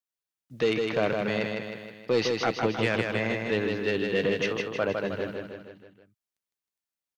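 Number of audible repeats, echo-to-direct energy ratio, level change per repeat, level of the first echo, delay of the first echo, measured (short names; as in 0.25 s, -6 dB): 5, -2.5 dB, -5.0 dB, -4.0 dB, 0.157 s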